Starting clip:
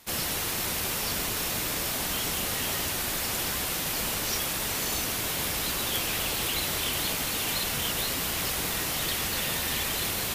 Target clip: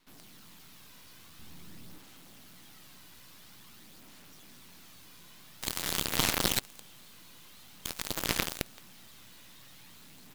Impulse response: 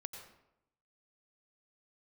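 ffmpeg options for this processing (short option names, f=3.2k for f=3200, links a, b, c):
-filter_complex "[0:a]equalizer=f=125:t=o:w=1:g=9,equalizer=f=250:t=o:w=1:g=8,equalizer=f=500:t=o:w=1:g=-10,equalizer=f=1k:t=o:w=1:g=4,equalizer=f=4k:t=o:w=1:g=6,equalizer=f=8k:t=o:w=1:g=-6,asettb=1/sr,asplit=3[a][b][c];[a]atrim=end=7.854[d];[b]atrim=start=7.85:end=8.62,asetpts=PTS-STARTPTS,afade=t=in:d=0.004:c=qsin,afade=t=out:st=0.766:d=0.004:c=qsin,acontrast=69[e];[c]atrim=start=8.616[f];[d][e]acrossfade=d=0.004:c1=hsin:c2=qsin[g];[g][f]acrossfade=d=0.004:c1=qsin:c2=hsin,aphaser=in_gain=1:out_gain=1:delay=2.1:decay=0.5:speed=0.48:type=sinusoidal,asplit=3[h][i][j];[h]afade=t=out:st=5.61:d=0.02[k];[i]aeval=exprs='0.316*sin(PI/2*1.78*val(0)/0.316)':c=same,afade=t=in:st=5.61:d=0.02,afade=t=out:st=6.58:d=0.02[l];[j]afade=t=in:st=6.58:d=0.02[m];[k][l][m]amix=inputs=3:normalize=0,acrusher=bits=4:mode=log:mix=0:aa=0.000001,bandreject=f=50:t=h:w=6,bandreject=f=100:t=h:w=6,bandreject=f=150:t=h:w=6,aecho=1:1:208|416|624|832|1040|1248:0.355|0.192|0.103|0.0559|0.0302|0.0163,afreqshift=54,aeval=exprs='0.447*(cos(1*acos(clip(val(0)/0.447,-1,1)))-cos(1*PI/2))+0.2*(cos(3*acos(clip(val(0)/0.447,-1,1)))-cos(3*PI/2))+0.00708*(cos(5*acos(clip(val(0)/0.447,-1,1)))-cos(5*PI/2))+0.0126*(cos(8*acos(clip(val(0)/0.447,-1,1)))-cos(8*PI/2))':c=same,aeval=exprs='max(val(0),0)':c=same,asettb=1/sr,asplit=3[n][o][p];[n]atrim=end=1.394[q];[o]atrim=start=1.39:end=1.98,asetpts=PTS-STARTPTS,afade=t=in:d=0.004:c=qsin,afade=t=out:st=0.586:d=0.004:c=qsin,lowshelf=f=320:g=9.5[r];[p]atrim=start=1.976[s];[q][r]acrossfade=d=0.004:c1=hsin:c2=qsin[t];[t][s]acrossfade=d=0.004:c1=qsin:c2=hsin,volume=-4.5dB"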